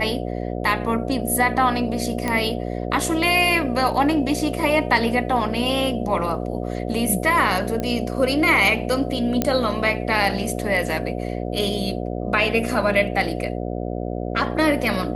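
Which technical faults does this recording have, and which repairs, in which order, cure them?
buzz 60 Hz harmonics 12 -27 dBFS
2.28 s: pop -10 dBFS
7.80 s: pop -13 dBFS
9.42 s: pop -5 dBFS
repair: de-click; de-hum 60 Hz, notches 12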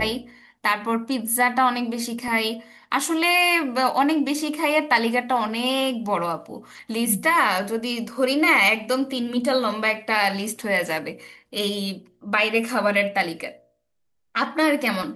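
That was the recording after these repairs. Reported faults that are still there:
nothing left

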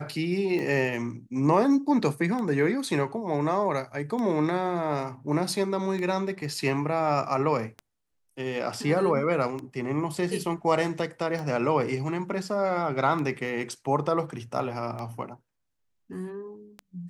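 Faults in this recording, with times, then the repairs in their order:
tick 33 1/3 rpm -22 dBFS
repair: de-click

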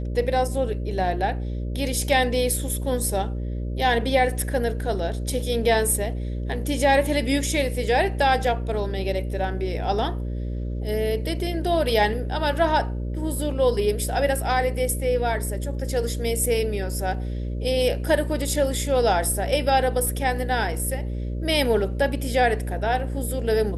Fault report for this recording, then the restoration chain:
buzz 60 Hz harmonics 10 -28 dBFS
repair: de-hum 60 Hz, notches 10

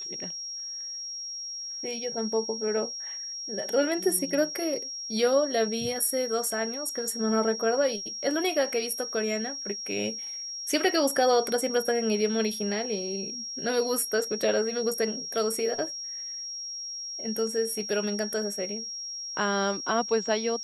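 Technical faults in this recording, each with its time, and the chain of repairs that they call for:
whine 5.6 kHz -34 dBFS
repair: band-stop 5.6 kHz, Q 30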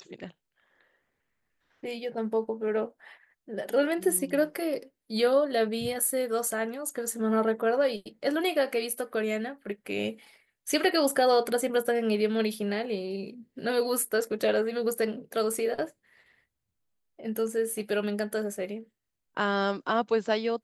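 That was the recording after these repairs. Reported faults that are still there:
nothing left

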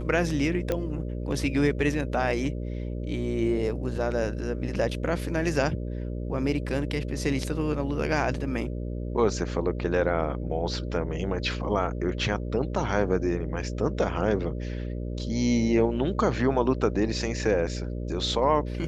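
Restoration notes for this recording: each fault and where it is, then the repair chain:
buzz 60 Hz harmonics 10 -32 dBFS
0.72 s: pop -14 dBFS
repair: de-click; de-hum 60 Hz, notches 10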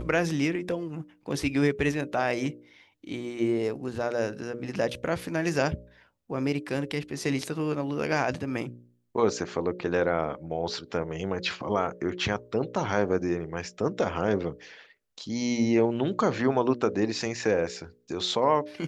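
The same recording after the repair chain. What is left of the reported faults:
nothing left

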